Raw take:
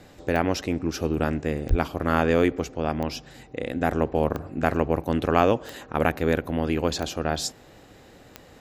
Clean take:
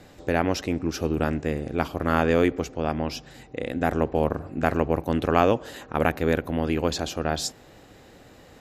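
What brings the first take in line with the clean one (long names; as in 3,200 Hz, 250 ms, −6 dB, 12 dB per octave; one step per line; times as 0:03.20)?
click removal
high-pass at the plosives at 0:01.69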